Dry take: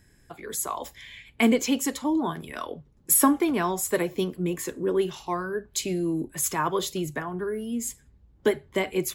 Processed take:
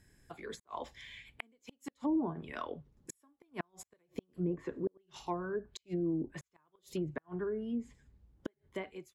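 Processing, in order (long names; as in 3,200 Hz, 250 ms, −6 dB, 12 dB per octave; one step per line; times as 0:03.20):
fade-out on the ending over 0.89 s
gate with flip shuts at −17 dBFS, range −42 dB
treble cut that deepens with the level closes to 680 Hz, closed at −24.5 dBFS
level −6 dB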